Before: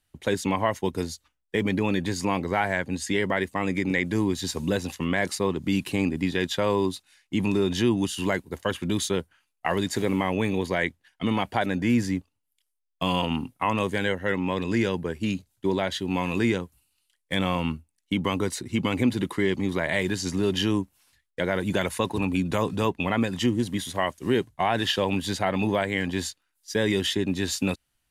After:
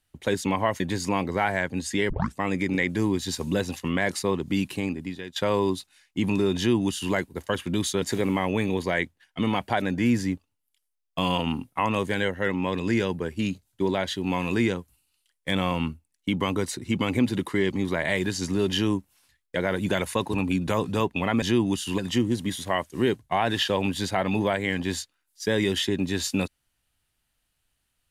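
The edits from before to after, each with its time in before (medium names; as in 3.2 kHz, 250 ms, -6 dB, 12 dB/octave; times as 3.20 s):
0.80–1.96 s: delete
3.26 s: tape start 0.26 s
5.66–6.52 s: fade out, to -17 dB
7.73–8.29 s: copy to 23.26 s
9.18–9.86 s: delete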